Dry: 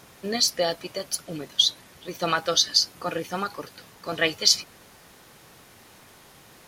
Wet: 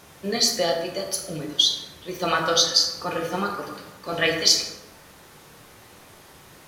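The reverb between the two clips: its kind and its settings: plate-style reverb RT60 1.1 s, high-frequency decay 0.5×, DRR 0.5 dB

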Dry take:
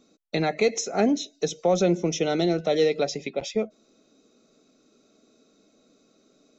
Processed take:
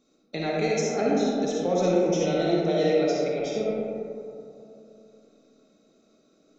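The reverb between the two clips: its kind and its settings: algorithmic reverb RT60 2.8 s, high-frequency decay 0.3×, pre-delay 15 ms, DRR -5 dB; trim -7 dB

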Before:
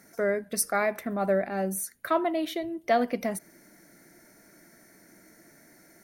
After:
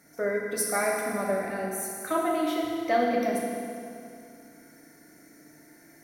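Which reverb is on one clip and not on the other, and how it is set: FDN reverb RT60 2.5 s, low-frequency decay 1.1×, high-frequency decay 0.85×, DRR -3 dB; trim -4 dB

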